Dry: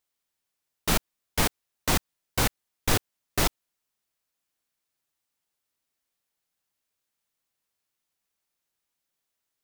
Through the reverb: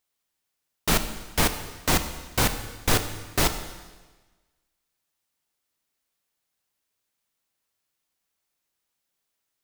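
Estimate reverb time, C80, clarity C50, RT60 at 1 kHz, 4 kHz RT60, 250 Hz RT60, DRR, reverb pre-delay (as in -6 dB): 1.3 s, 11.5 dB, 10.5 dB, 1.3 s, 1.3 s, 1.3 s, 8.5 dB, 28 ms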